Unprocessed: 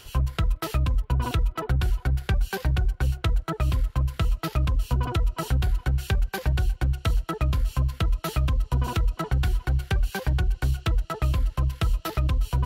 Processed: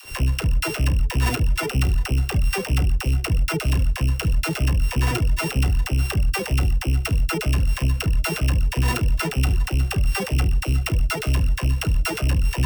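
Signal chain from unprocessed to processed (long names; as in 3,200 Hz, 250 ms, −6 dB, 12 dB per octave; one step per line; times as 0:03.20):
samples sorted by size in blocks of 16 samples
leveller curve on the samples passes 2
all-pass dispersion lows, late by 56 ms, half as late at 460 Hz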